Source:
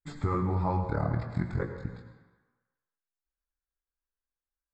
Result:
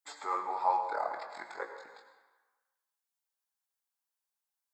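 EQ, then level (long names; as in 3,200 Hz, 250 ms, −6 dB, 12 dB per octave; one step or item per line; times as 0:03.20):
high-pass filter 510 Hz 24 dB per octave
parametric band 860 Hz +8 dB 0.52 octaves
high-shelf EQ 3,700 Hz +10 dB
−2.0 dB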